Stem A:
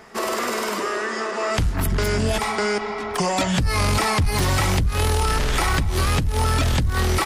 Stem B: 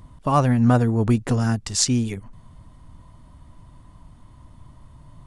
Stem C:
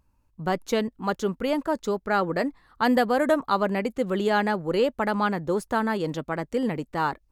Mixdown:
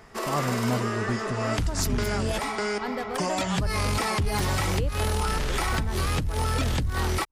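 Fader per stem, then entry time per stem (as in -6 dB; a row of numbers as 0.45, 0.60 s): -6.0, -10.5, -12.5 dB; 0.00, 0.00, 0.00 s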